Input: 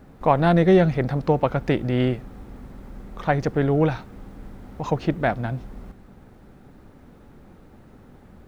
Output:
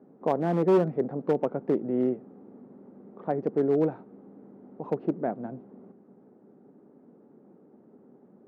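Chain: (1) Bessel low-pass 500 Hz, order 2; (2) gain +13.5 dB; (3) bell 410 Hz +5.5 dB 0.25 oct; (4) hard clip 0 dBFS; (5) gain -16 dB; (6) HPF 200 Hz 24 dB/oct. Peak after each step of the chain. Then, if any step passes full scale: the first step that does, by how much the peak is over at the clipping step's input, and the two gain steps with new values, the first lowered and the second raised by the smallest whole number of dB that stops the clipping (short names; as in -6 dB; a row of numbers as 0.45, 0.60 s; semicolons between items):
-8.0, +5.5, +7.5, 0.0, -16.0, -12.0 dBFS; step 2, 7.5 dB; step 2 +5.5 dB, step 5 -8 dB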